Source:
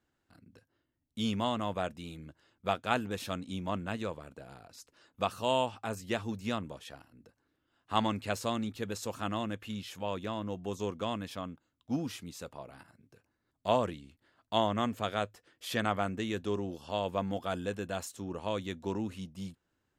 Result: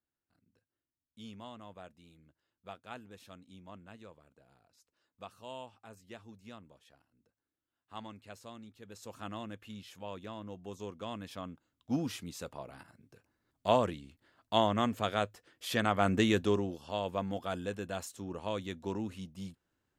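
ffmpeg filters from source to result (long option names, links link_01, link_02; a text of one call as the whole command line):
ffmpeg -i in.wav -af "volume=8.5dB,afade=type=in:start_time=8.82:duration=0.4:silence=0.375837,afade=type=in:start_time=10.99:duration=1.04:silence=0.375837,afade=type=in:start_time=15.96:duration=0.21:silence=0.421697,afade=type=out:start_time=16.17:duration=0.61:silence=0.298538" out.wav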